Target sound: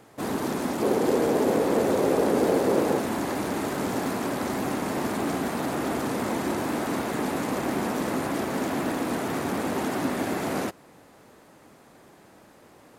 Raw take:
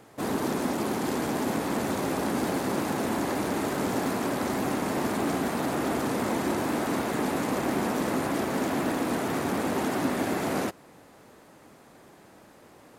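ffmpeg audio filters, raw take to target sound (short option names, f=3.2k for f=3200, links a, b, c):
-filter_complex "[0:a]asettb=1/sr,asplit=3[a][b][c];[a]atrim=end=0.824[d];[b]atrim=start=0.82:end=2.99,asetpts=PTS-STARTPTS,afade=t=in:d=0.004:c=qsin,afade=t=out:st=2.166:d=0.004:c=qsin,equalizer=f=470:t=o:w=0.89:g=12.5[e];[c]atrim=start=2.986[f];[d][e]acrossfade=d=0.004:c1=hsin:c2=qsin[g];[g][f]acrossfade=d=0.004:c1=qsin:c2=hsin"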